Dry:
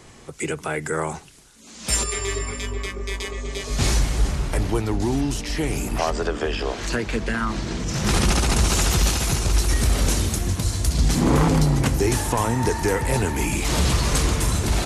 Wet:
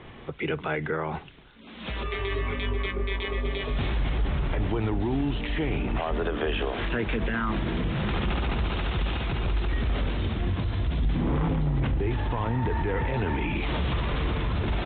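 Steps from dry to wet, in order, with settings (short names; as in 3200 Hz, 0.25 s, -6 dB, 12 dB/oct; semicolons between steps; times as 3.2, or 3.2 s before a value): 11.05–13.01 low shelf 120 Hz +8.5 dB; limiter -20.5 dBFS, peak gain reduction 15.5 dB; downsampling 8000 Hz; gain +2 dB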